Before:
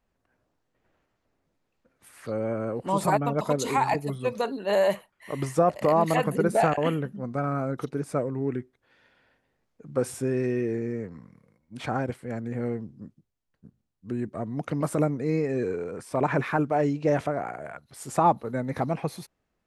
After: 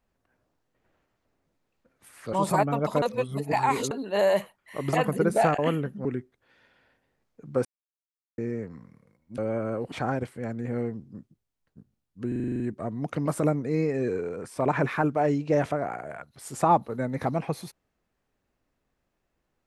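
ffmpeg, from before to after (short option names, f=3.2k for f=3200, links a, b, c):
-filter_complex "[0:a]asplit=18[a][b][c][d][e][f][g][h][i][j][k][l][m][n][o][p][q][r];[a]atrim=end=2.332[s];[b]atrim=start=2.868:end=3.562[t];[c]atrim=start=3.558:end=4.452,asetpts=PTS-STARTPTS,areverse[u];[d]atrim=start=4.448:end=5.472[v];[e]atrim=start=6.118:end=7.242[w];[f]atrim=start=8.458:end=10.06,asetpts=PTS-STARTPTS,afade=t=out:st=1.598:d=0.004:c=hsin[x];[g]atrim=start=10.06:end=10.79,asetpts=PTS-STARTPTS,volume=0[y];[h]atrim=start=10.79:end=11.792,asetpts=PTS-STARTPTS,afade=t=in:d=0.004:c=hsin[z];[i]atrim=start=2.328:end=2.872[aa];[j]atrim=start=11.788:end=14.192[ab];[k]atrim=start=14.148:end=14.192[ac];[l]atrim=start=14.148:end=14.192[ad];[m]atrim=start=14.148:end=14.192[ae];[n]atrim=start=14.148:end=14.192[af];[o]atrim=start=14.148:end=14.192[ag];[p]atrim=start=14.148:end=14.192[ah];[q]atrim=start=14.148:end=14.192[ai];[r]atrim=start=14.148[aj];[s][t]acrossfade=d=0.004:c1=hsin:c2=hsin[ak];[ak][u]acrossfade=d=0.004:c1=hsin:c2=hsin[al];[al][v]acrossfade=d=0.004:c1=hsin:c2=hsin[am];[am][w]acrossfade=d=0.004:c1=hsin:c2=hsin[an];[x][y][z]concat=n=3:v=0:a=1[ao];[an][ao]acrossfade=d=0.004:c1=hsin:c2=hsin[ap];[ap][aa]acrossfade=d=0.004:c1=hsin:c2=hsin[aq];[aq][ab]acrossfade=d=0.004:c1=hsin:c2=hsin[ar];[ar][ac]acrossfade=d=0.004:c1=hsin:c2=hsin[as];[as][ad]acrossfade=d=0.004:c1=hsin:c2=hsin[at];[at][ae]acrossfade=d=0.004:c1=hsin:c2=hsin[au];[au][af]acrossfade=d=0.004:c1=hsin:c2=hsin[av];[av][ag]acrossfade=d=0.004:c1=hsin:c2=hsin[aw];[aw][ah]acrossfade=d=0.004:c1=hsin:c2=hsin[ax];[ax][ai]acrossfade=d=0.004:c1=hsin:c2=hsin[ay];[ay][aj]acrossfade=d=0.004:c1=hsin:c2=hsin"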